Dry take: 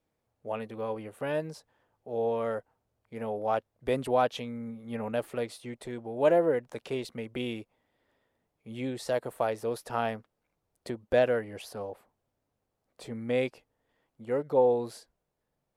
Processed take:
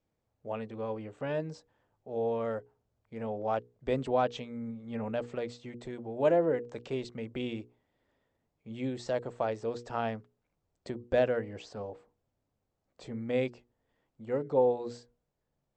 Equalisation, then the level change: brick-wall FIR low-pass 8200 Hz; low shelf 330 Hz +6.5 dB; notches 60/120/180/240/300/360/420/480 Hz; -4.0 dB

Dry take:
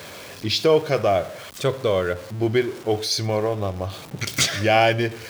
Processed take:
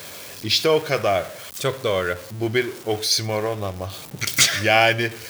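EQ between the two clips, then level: dynamic EQ 1800 Hz, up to +6 dB, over -34 dBFS, Q 0.84; high shelf 3800 Hz +7 dB; high shelf 9200 Hz +5 dB; -2.5 dB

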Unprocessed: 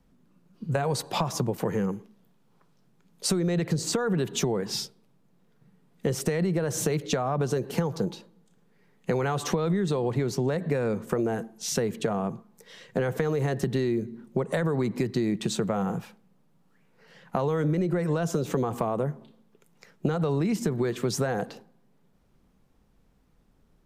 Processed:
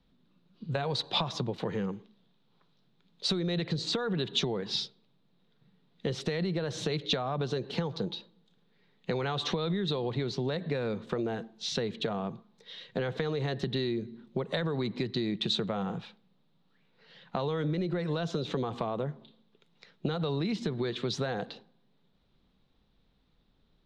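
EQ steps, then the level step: synth low-pass 3800 Hz, resonance Q 5.3; -5.5 dB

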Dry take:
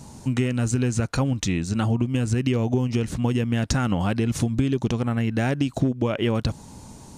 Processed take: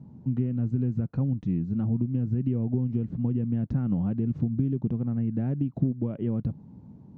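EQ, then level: band-pass 170 Hz, Q 1.5; air absorption 130 m; 0.0 dB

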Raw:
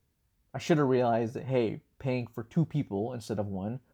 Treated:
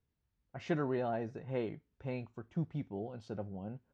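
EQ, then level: dynamic EQ 1800 Hz, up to +5 dB, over -54 dBFS, Q 2.9; air absorption 130 m; -8.5 dB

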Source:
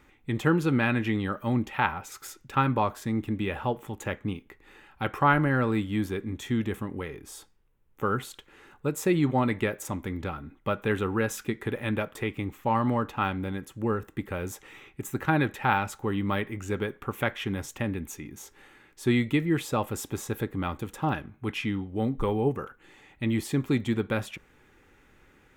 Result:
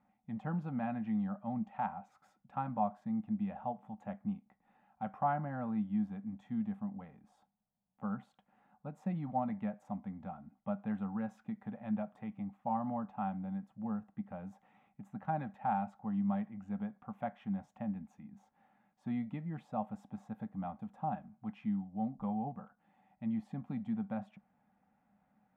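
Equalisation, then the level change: double band-pass 380 Hz, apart 1.8 oct; 0.0 dB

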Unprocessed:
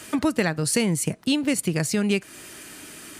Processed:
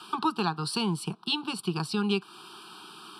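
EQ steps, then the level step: BPF 320–4700 Hz; fixed phaser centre 410 Hz, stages 8; fixed phaser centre 1900 Hz, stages 6; +7.0 dB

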